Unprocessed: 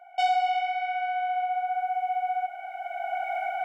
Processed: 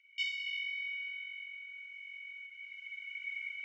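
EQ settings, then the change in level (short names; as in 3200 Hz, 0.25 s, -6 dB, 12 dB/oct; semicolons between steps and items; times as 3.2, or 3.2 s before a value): dynamic EQ 4400 Hz, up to -4 dB, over -44 dBFS, Q 0.84; rippled Chebyshev high-pass 1900 Hz, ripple 6 dB; air absorption 160 m; +8.5 dB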